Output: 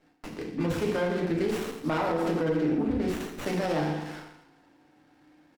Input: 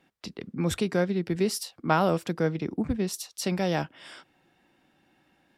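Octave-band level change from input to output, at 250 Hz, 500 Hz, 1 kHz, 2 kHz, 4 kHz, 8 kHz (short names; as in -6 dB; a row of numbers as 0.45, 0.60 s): +0.5, +0.5, -2.0, -0.5, -4.5, -9.5 dB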